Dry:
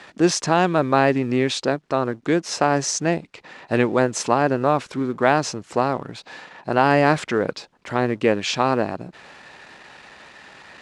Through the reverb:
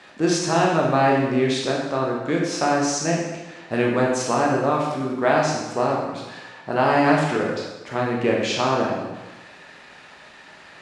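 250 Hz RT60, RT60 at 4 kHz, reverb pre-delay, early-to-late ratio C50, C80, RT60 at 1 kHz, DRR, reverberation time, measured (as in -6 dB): 1.1 s, 1.0 s, 8 ms, 2.0 dB, 4.0 dB, 1.1 s, -2.5 dB, 1.1 s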